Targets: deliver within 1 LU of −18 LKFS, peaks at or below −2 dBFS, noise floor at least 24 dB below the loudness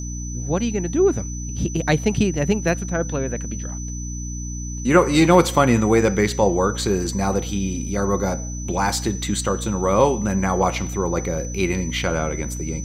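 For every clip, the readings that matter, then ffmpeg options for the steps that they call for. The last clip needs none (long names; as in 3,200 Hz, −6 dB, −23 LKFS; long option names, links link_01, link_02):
mains hum 60 Hz; hum harmonics up to 300 Hz; level of the hum −27 dBFS; interfering tone 6,000 Hz; level of the tone −34 dBFS; integrated loudness −21.0 LKFS; sample peak −2.0 dBFS; target loudness −18.0 LKFS
→ -af "bandreject=frequency=60:width_type=h:width=4,bandreject=frequency=120:width_type=h:width=4,bandreject=frequency=180:width_type=h:width=4,bandreject=frequency=240:width_type=h:width=4,bandreject=frequency=300:width_type=h:width=4"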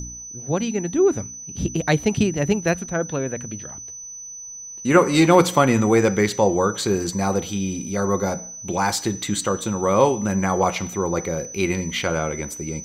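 mains hum none found; interfering tone 6,000 Hz; level of the tone −34 dBFS
→ -af "bandreject=frequency=6000:width=30"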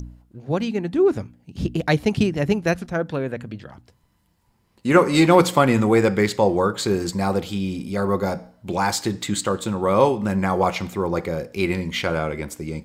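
interfering tone none found; integrated loudness −21.5 LKFS; sample peak −2.0 dBFS; target loudness −18.0 LKFS
→ -af "volume=3.5dB,alimiter=limit=-2dB:level=0:latency=1"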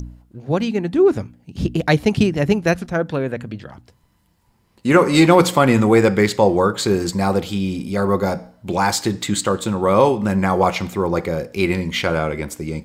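integrated loudness −18.5 LKFS; sample peak −2.0 dBFS; background noise floor −61 dBFS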